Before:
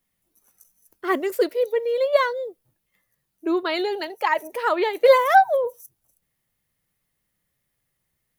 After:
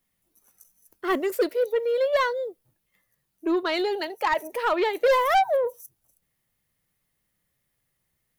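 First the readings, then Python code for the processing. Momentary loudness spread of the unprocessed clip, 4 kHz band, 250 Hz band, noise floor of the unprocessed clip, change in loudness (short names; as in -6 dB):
13 LU, -1.0 dB, -1.0 dB, -77 dBFS, -3.0 dB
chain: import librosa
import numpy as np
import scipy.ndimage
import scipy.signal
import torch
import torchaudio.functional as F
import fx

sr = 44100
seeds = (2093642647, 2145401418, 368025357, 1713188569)

y = 10.0 ** (-15.5 / 20.0) * np.tanh(x / 10.0 ** (-15.5 / 20.0))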